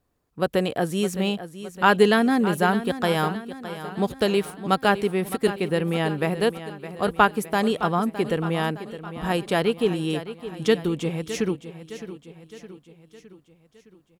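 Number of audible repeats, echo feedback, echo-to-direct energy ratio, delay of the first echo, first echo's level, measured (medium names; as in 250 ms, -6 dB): 4, 53%, -11.5 dB, 613 ms, -13.0 dB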